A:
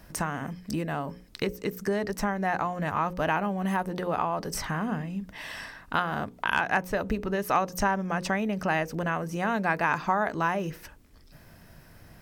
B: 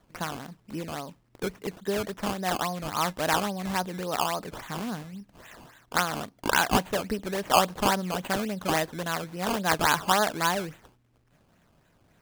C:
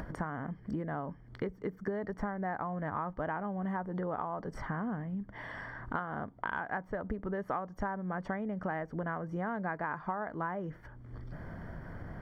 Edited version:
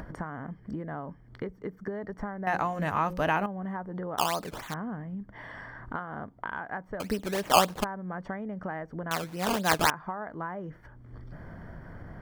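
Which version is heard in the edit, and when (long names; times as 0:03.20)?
C
0:02.47–0:03.46: punch in from A
0:04.18–0:04.74: punch in from B
0:07.00–0:07.84: punch in from B
0:09.11–0:09.90: punch in from B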